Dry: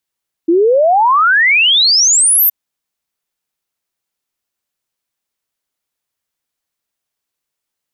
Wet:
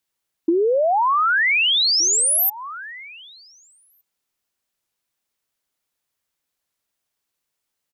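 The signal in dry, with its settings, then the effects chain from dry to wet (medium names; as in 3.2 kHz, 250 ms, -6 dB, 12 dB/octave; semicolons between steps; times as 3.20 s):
log sweep 320 Hz -> 14 kHz 2.02 s -7 dBFS
echo from a far wall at 260 m, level -18 dB; compression 6:1, threshold -17 dBFS; warped record 33 1/3 rpm, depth 100 cents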